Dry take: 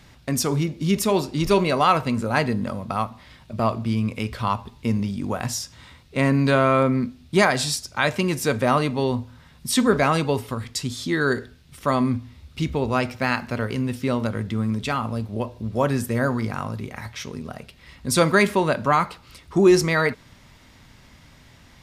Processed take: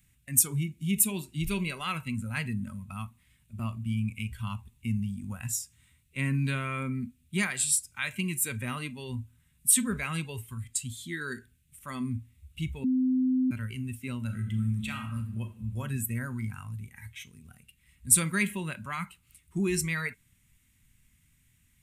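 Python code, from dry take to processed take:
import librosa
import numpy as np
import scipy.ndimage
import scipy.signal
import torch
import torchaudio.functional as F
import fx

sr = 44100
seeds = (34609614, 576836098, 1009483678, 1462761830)

y = fx.reverb_throw(x, sr, start_s=14.2, length_s=1.57, rt60_s=1.2, drr_db=4.0)
y = fx.edit(y, sr, fx.bleep(start_s=12.84, length_s=0.67, hz=257.0, db=-11.0), tone=tone)
y = fx.noise_reduce_blind(y, sr, reduce_db=11)
y = fx.curve_eq(y, sr, hz=(110.0, 200.0, 650.0, 2500.0, 4900.0, 8300.0), db=(0, -3, -23, 0, -11, 12))
y = y * librosa.db_to_amplitude(-4.0)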